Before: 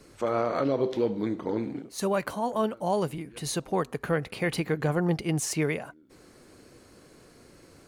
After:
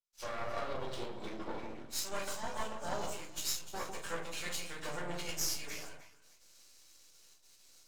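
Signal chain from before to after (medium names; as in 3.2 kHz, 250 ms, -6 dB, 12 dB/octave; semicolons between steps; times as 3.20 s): knee-point frequency compression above 3.4 kHz 1.5:1; high-pass 60 Hz 24 dB/octave; pre-emphasis filter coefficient 0.97; hum notches 50/100/150/200/250/300 Hz; gate with hold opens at -56 dBFS; peaking EQ 1.9 kHz -6 dB 0.26 oct; compression 8:1, threshold -50 dBFS, peak gain reduction 17.5 dB; simulated room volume 150 m³, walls furnished, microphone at 4.6 m; half-wave rectifier; echo whose repeats swap between lows and highs 153 ms, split 1.1 kHz, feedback 51%, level -4 dB; three bands expanded up and down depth 70%; trim +8 dB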